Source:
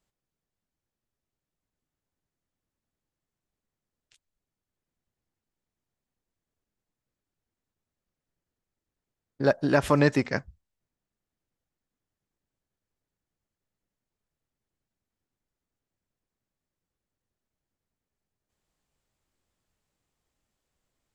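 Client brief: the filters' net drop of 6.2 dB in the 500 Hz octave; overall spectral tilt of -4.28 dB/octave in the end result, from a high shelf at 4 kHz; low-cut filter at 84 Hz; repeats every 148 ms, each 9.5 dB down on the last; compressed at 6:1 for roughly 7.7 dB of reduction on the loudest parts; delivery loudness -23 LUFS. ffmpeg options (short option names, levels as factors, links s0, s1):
-af "highpass=84,equalizer=f=500:t=o:g=-7.5,highshelf=f=4000:g=-5,acompressor=threshold=0.0447:ratio=6,aecho=1:1:148|296|444|592:0.335|0.111|0.0365|0.012,volume=3.35"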